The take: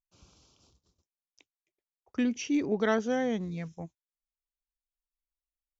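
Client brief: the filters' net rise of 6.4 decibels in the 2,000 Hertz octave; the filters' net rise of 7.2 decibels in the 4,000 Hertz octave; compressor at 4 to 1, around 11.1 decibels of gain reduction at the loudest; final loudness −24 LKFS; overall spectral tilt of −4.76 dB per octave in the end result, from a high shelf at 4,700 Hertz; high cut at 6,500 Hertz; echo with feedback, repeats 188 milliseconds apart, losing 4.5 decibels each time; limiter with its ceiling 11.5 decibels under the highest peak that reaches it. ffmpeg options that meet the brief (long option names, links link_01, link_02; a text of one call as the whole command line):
ffmpeg -i in.wav -af "lowpass=6500,equalizer=frequency=2000:width_type=o:gain=6,equalizer=frequency=4000:width_type=o:gain=4.5,highshelf=frequency=4700:gain=7.5,acompressor=threshold=-36dB:ratio=4,alimiter=level_in=11.5dB:limit=-24dB:level=0:latency=1,volume=-11.5dB,aecho=1:1:188|376|564|752|940|1128|1316|1504|1692:0.596|0.357|0.214|0.129|0.0772|0.0463|0.0278|0.0167|0.01,volume=19.5dB" out.wav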